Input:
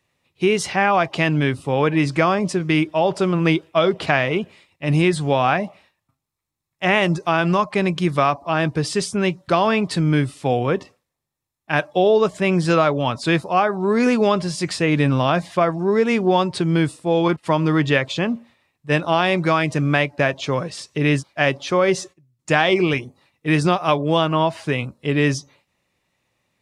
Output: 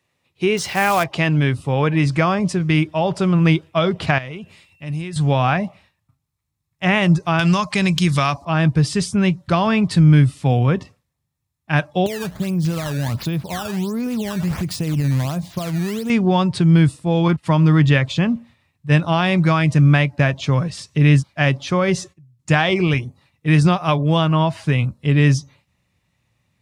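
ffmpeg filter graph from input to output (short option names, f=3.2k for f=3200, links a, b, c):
-filter_complex "[0:a]asettb=1/sr,asplit=3[a][b][c];[a]atrim=end=0.574[d];[b]atrim=start=0.57:end=1.04,asetpts=PTS-STARTPTS,afade=t=in:d=0.004:c=qsin,afade=t=out:st=0.466:d=0.004:c=qsin,lowpass=4.8k,aemphasis=mode=production:type=50fm,acrusher=bits=3:mode=log:mix=0:aa=0.000001[e];[c]atrim=start=1.036[f];[d][e]acrossfade=d=0.004:c1=hsin:c2=qsin[g];[g][f]acrossfade=d=0.004:c1=qsin:c2=hsin,asettb=1/sr,asplit=3[h][i][j];[h]atrim=end=4.184[k];[i]atrim=start=4.18:end=5.16,asetpts=PTS-STARTPTS,afade=t=in:d=0.004:c=qsin,afade=t=out:st=0.976:d=0.004:c=qsin,highshelf=f=5k:g=7.5,acompressor=threshold=-39dB:ratio=2:attack=3.2:release=140:knee=1:detection=peak,aeval=exprs='val(0)+0.00158*sin(2*PI*2700*n/s)':c=same[l];[j]atrim=start=5.156[m];[k][l]acrossfade=d=0.004:c1=hsin:c2=qsin[n];[n][m]acrossfade=d=0.004:c1=qsin:c2=hsin,asettb=1/sr,asplit=3[o][p][q];[o]atrim=end=7.394[r];[p]atrim=start=7.39:end=8.45,asetpts=PTS-STARTPTS,afade=t=in:d=0.004:c=qsin,afade=t=out:st=1.056:d=0.004:c=qsin,equalizer=f=6.7k:w=0.36:g=14.5,acompressor=threshold=-19dB:ratio=1.5:attack=3.2:release=140:knee=1:detection=peak,volume=5.5dB,asoftclip=hard,volume=-5.5dB[s];[q]atrim=start=8.446[t];[r][s]acrossfade=d=0.004:c1=hsin:c2=qsin[u];[u][t]acrossfade=d=0.004:c1=qsin:c2=hsin,asettb=1/sr,asplit=3[v][w][x];[v]atrim=end=12.064[y];[w]atrim=start=12.06:end=16.1,asetpts=PTS-STARTPTS,afade=t=in:d=0.004:c=qsin,afade=t=out:st=4.036:d=0.004:c=qsin,equalizer=f=1.8k:t=o:w=0.95:g=-10,acompressor=threshold=-22dB:ratio=6:attack=3.2:release=140:knee=1:detection=peak,acrusher=samples=12:mix=1:aa=0.000001:lfo=1:lforange=19.2:lforate=1.4[z];[x]atrim=start=16.096[aa];[y][z]acrossfade=d=0.004:c1=hsin:c2=qsin[ab];[ab][aa]acrossfade=d=0.004:c1=qsin:c2=hsin,highpass=62,asubboost=boost=5.5:cutoff=160"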